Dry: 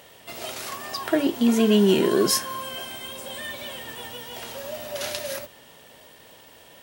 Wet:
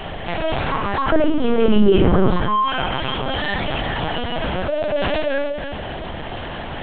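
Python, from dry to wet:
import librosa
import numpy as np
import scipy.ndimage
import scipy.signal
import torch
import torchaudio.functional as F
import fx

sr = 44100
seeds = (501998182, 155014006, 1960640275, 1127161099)

y = fx.highpass(x, sr, hz=170.0, slope=6)
y = fx.air_absorb(y, sr, metres=320.0)
y = y + 10.0 ** (-17.5 / 20.0) * np.pad(y, (int(303 * sr / 1000.0), 0))[:len(y)]
y = fx.room_shoebox(y, sr, seeds[0], volume_m3=280.0, walls='furnished', distance_m=2.9)
y = fx.lpc_vocoder(y, sr, seeds[1], excitation='pitch_kept', order=8)
y = fx.env_flatten(y, sr, amount_pct=50)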